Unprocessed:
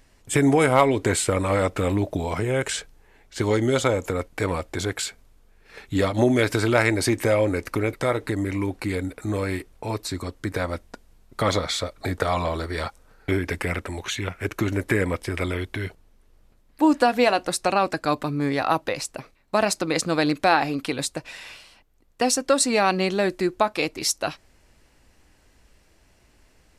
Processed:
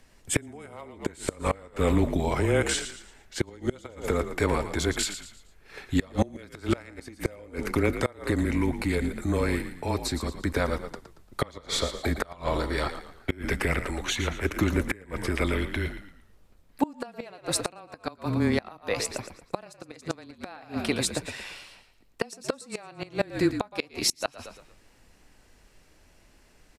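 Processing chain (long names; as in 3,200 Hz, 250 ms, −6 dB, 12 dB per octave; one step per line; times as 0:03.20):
frequency shifter −18 Hz
echo with shifted repeats 114 ms, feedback 37%, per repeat −43 Hz, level −10 dB
gate with flip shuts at −11 dBFS, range −26 dB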